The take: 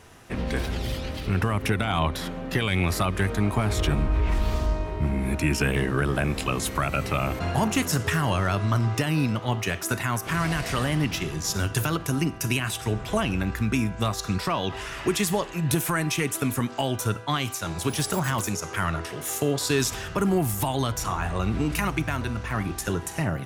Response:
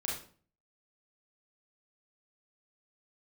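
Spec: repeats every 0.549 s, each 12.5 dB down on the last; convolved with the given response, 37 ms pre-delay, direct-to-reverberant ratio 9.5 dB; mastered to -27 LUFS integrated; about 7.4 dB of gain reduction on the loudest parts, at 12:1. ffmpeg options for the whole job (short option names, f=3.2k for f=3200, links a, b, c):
-filter_complex "[0:a]acompressor=threshold=-26dB:ratio=12,aecho=1:1:549|1098|1647:0.237|0.0569|0.0137,asplit=2[a][b];[1:a]atrim=start_sample=2205,adelay=37[c];[b][c]afir=irnorm=-1:irlink=0,volume=-12.5dB[d];[a][d]amix=inputs=2:normalize=0,volume=3.5dB"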